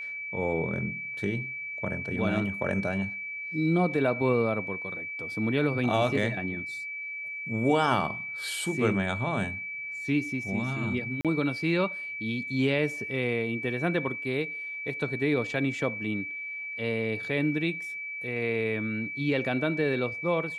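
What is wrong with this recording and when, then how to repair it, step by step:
tone 2300 Hz -34 dBFS
11.21–11.25 gap 37 ms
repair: notch 2300 Hz, Q 30; interpolate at 11.21, 37 ms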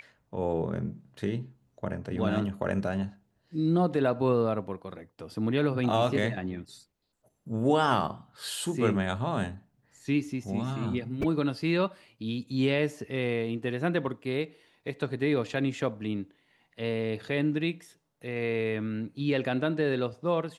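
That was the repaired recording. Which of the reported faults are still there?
none

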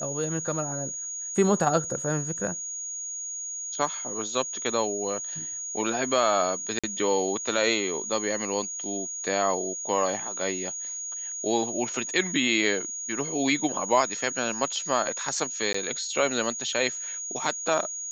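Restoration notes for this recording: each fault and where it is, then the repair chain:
tone 6700 Hz -32 dBFS
6.79–6.84 gap 46 ms
15.73–15.74 gap 14 ms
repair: notch 6700 Hz, Q 30; interpolate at 6.79, 46 ms; interpolate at 15.73, 14 ms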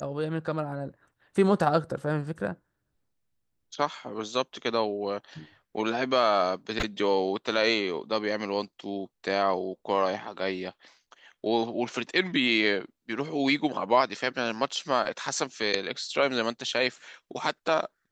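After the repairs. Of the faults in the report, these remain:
none

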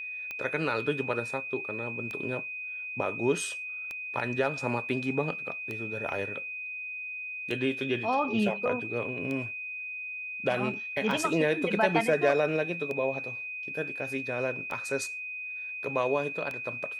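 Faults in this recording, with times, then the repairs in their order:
tick 33 1/3 rpm -22 dBFS
tone 2500 Hz -35 dBFS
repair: de-click; notch 2500 Hz, Q 30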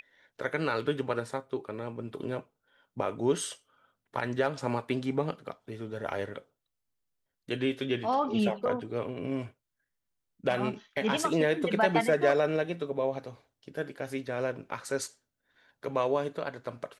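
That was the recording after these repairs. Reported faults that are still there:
none

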